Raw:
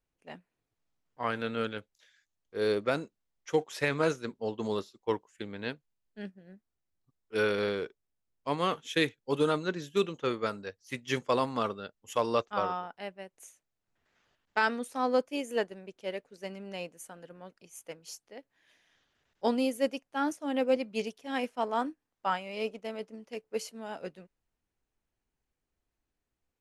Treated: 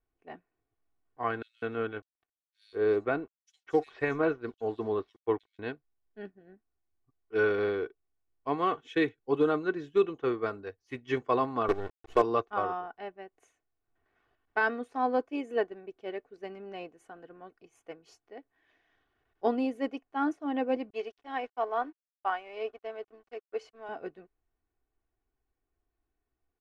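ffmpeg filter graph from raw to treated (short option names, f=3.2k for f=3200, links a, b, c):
-filter_complex "[0:a]asettb=1/sr,asplit=3[a][b][c];[a]atrim=end=1.424[d];[b]atrim=start=1.42:end=5.59,asetpts=PTS-STARTPTS,afade=t=in:d=0.004:c=qsin,afade=t=out:st=4.166:d=0.004:c=qsin,aeval=exprs='sgn(val(0))*max(abs(val(0))-0.00158,0)':c=same,acrossover=split=4300[e][f];[e]adelay=200[g];[g][f]amix=inputs=2:normalize=0,atrim=end_sample=183897[h];[c]atrim=start=5.586[i];[d][h]acrossfade=d=0.004:c1=hsin:c2=qsin[j];[j][i]acrossfade=d=0.004:c1=qsin:c2=hsin,asettb=1/sr,asplit=3[k][l][m];[k]atrim=end=11.684[n];[l]atrim=start=11.68:end=12.22,asetpts=PTS-STARTPTS,afade=t=in:d=0.004:c=qsin,afade=t=out:st=0.536:d=0.004:c=qsin,equalizer=f=360:w=1.3:g=13,acrusher=bits=5:dc=4:mix=0:aa=0.000001[o];[m]atrim=start=12.216[p];[n][o]acrossfade=d=0.004:c1=hsin:c2=qsin[q];[q][p]acrossfade=d=0.004:c1=qsin:c2=hsin,asettb=1/sr,asplit=3[r][s][t];[r]atrim=end=20.904[u];[s]atrim=start=20.9:end=23.89,asetpts=PTS-STARTPTS,afade=t=in:d=0.004:c=qsin,afade=t=out:st=2.986:d=0.004:c=qsin,highpass=440,lowpass=7.7k,aeval=exprs='sgn(val(0))*max(abs(val(0))-0.00126,0)':c=same[v];[t]atrim=start=23.886[w];[u][v]acrossfade=d=0.004:c1=hsin:c2=qsin[x];[x][w]acrossfade=d=0.004:c1=qsin:c2=hsin,lowpass=1.6k,aemphasis=mode=production:type=50kf,aecho=1:1:2.7:0.58"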